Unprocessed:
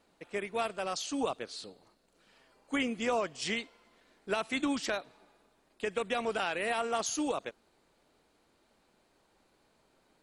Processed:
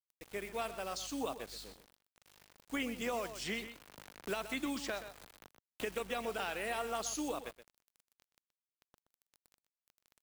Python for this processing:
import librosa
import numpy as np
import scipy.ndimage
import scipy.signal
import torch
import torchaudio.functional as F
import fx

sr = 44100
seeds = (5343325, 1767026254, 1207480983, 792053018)

y = fx.dmg_buzz(x, sr, base_hz=50.0, harmonics=7, level_db=-54.0, tilt_db=-8, odd_only=False)
y = fx.quant_dither(y, sr, seeds[0], bits=8, dither='none')
y = fx.high_shelf(y, sr, hz=8300.0, db=4.5)
y = y + 10.0 ** (-13.0 / 20.0) * np.pad(y, (int(124 * sr / 1000.0), 0))[:len(y)]
y = fx.band_squash(y, sr, depth_pct=70, at=(3.01, 5.99))
y = y * 10.0 ** (-6.0 / 20.0)